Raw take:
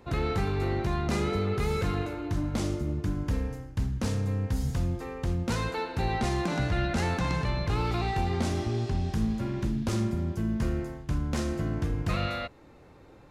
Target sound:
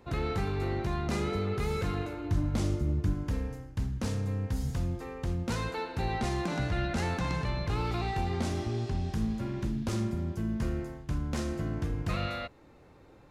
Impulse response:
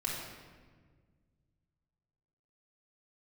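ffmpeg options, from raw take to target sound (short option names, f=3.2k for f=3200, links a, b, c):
-filter_complex "[0:a]asettb=1/sr,asplit=3[a][b][c];[a]atrim=end=2.244[d];[b]atrim=start=2.24:end=3.14,asetpts=PTS-STARTPTS,afade=t=in:d=0.004:c=qsin,afade=t=out:st=0.896:d=0.004:c=qsin,equalizer=f=68:w=0.57:g=6.5[e];[c]atrim=start=3.136[f];[d][e]acrossfade=d=0.004:c1=hsin:c2=qsin[g];[g][f]acrossfade=d=0.004:c1=qsin:c2=hsin,volume=-3dB"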